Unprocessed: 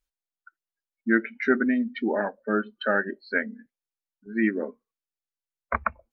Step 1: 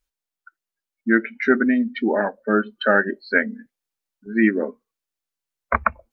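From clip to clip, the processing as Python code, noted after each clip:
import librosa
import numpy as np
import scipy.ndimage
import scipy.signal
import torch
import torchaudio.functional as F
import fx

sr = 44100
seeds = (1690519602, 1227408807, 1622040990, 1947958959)

y = fx.rider(x, sr, range_db=10, speed_s=2.0)
y = F.gain(torch.from_numpy(y), 6.0).numpy()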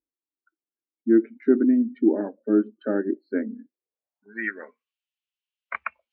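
y = fx.filter_sweep_bandpass(x, sr, from_hz=310.0, to_hz=2900.0, start_s=3.69, end_s=4.88, q=4.6)
y = F.gain(torch.from_numpy(y), 6.5).numpy()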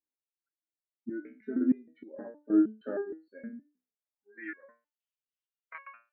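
y = fx.resonator_held(x, sr, hz=6.4, low_hz=63.0, high_hz=550.0)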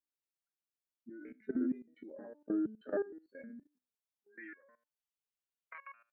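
y = fx.level_steps(x, sr, step_db=17)
y = F.gain(torch.from_numpy(y), 2.5).numpy()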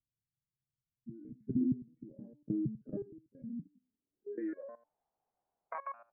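y = fx.filter_sweep_lowpass(x, sr, from_hz=130.0, to_hz=770.0, start_s=3.44, end_s=4.75, q=4.7)
y = F.gain(torch.from_numpy(y), 12.0).numpy()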